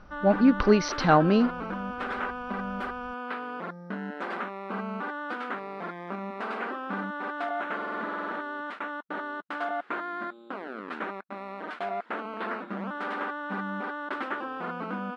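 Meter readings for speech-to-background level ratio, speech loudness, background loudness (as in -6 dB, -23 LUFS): 11.5 dB, -22.5 LUFS, -34.0 LUFS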